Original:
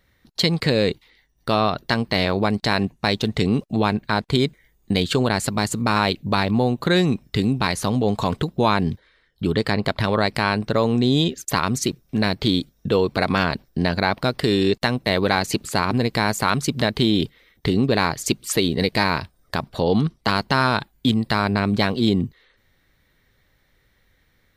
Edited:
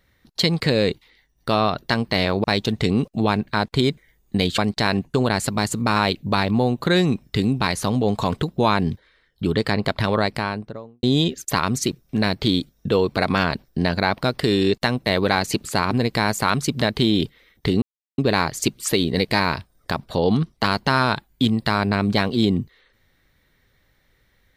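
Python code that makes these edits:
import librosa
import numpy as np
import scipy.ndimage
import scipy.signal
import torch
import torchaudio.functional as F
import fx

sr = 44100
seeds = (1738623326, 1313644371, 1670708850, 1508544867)

y = fx.studio_fade_out(x, sr, start_s=10.11, length_s=0.92)
y = fx.edit(y, sr, fx.move(start_s=2.44, length_s=0.56, to_s=5.14),
    fx.insert_silence(at_s=17.82, length_s=0.36), tone=tone)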